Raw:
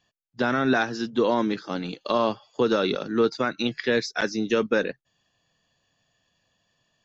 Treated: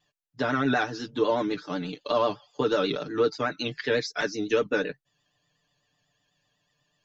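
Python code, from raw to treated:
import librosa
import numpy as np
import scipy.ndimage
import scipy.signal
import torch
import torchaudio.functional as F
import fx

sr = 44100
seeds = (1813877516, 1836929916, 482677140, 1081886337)

y = fx.vibrato(x, sr, rate_hz=8.1, depth_cents=81.0)
y = y + 0.83 * np.pad(y, (int(6.8 * sr / 1000.0), 0))[:len(y)]
y = y * 10.0 ** (-4.5 / 20.0)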